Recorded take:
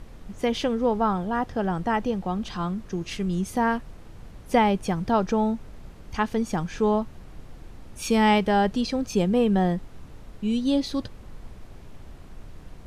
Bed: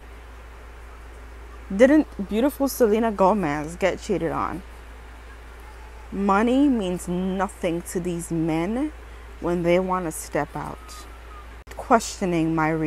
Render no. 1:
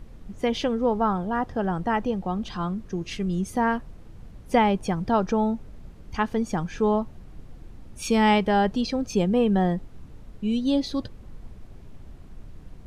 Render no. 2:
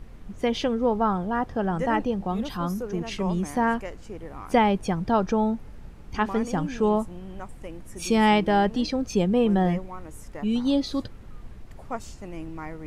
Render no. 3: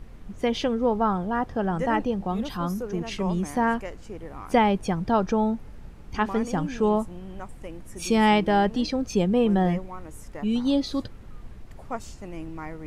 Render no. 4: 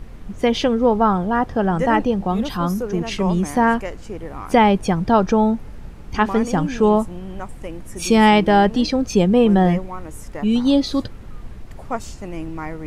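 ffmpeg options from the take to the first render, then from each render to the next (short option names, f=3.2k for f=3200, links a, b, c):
-af "afftdn=nr=6:nf=-45"
-filter_complex "[1:a]volume=-15.5dB[a];[0:a][a]amix=inputs=2:normalize=0"
-af anull
-af "volume=7dB,alimiter=limit=-2dB:level=0:latency=1"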